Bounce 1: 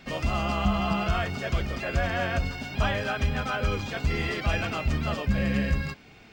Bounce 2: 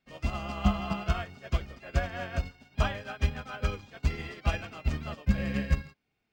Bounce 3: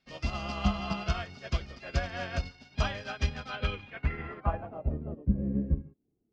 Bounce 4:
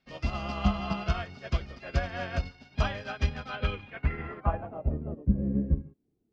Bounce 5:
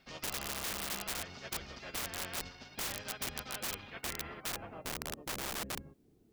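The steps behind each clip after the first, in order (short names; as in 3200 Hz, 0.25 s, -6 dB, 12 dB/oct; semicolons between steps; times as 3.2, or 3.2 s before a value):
upward expander 2.5:1, over -40 dBFS; gain +2 dB
in parallel at -1 dB: compressor, threshold -35 dBFS, peak gain reduction 15.5 dB; on the sum: low-pass sweep 5200 Hz -> 340 Hz, 3.39–5.22; gain -4 dB
high shelf 4200 Hz -8.5 dB; gain +2 dB
wrapped overs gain 27.5 dB; spectral compressor 2:1; gain +8 dB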